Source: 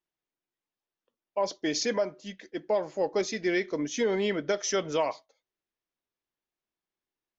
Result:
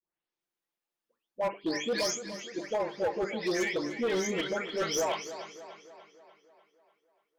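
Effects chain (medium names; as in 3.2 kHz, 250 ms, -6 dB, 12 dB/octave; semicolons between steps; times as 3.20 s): delay that grows with frequency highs late, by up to 404 ms; bass shelf 130 Hz -5.5 dB; hum notches 50/100/150/200/250/300/350/400/450 Hz; overload inside the chain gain 26.5 dB; tape echo 295 ms, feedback 58%, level -10 dB, low-pass 5.5 kHz; trim +1.5 dB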